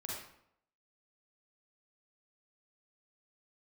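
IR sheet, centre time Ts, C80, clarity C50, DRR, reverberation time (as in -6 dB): 64 ms, 3.5 dB, -1.0 dB, -4.5 dB, 0.70 s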